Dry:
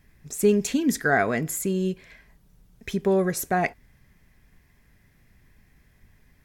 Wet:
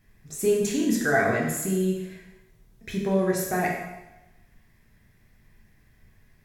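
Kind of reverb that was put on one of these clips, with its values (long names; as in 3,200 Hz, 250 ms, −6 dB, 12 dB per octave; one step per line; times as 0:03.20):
dense smooth reverb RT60 1 s, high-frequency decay 0.95×, DRR −2.5 dB
level −5 dB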